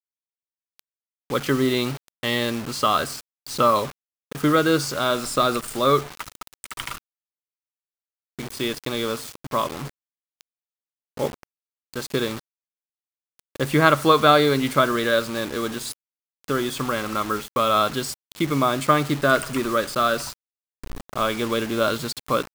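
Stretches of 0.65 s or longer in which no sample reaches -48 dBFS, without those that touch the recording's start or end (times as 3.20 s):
6.98–8.39 s
10.41–11.17 s
12.40–13.39 s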